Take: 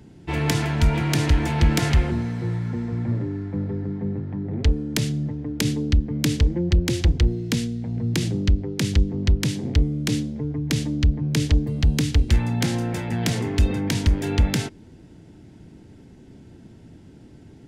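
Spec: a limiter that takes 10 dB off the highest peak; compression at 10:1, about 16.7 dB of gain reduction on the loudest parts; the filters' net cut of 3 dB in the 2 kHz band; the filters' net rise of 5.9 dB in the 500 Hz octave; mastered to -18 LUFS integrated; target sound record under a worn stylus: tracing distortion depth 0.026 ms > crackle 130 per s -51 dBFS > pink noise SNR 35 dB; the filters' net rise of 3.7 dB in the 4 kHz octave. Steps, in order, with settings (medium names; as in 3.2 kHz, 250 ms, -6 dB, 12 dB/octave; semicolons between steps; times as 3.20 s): peaking EQ 500 Hz +8 dB; peaking EQ 2 kHz -6 dB; peaking EQ 4 kHz +6.5 dB; compression 10:1, threshold -30 dBFS; peak limiter -25.5 dBFS; tracing distortion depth 0.026 ms; crackle 130 per s -51 dBFS; pink noise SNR 35 dB; trim +18 dB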